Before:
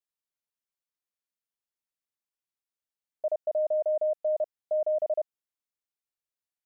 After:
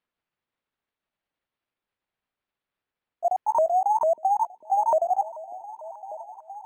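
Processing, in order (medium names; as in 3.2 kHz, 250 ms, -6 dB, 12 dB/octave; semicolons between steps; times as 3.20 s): sawtooth pitch modulation +7.5 st, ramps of 448 ms; repeats whose band climbs or falls 593 ms, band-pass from 280 Hz, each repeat 0.7 oct, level -11.5 dB; decimation joined by straight lines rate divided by 6×; trim +7 dB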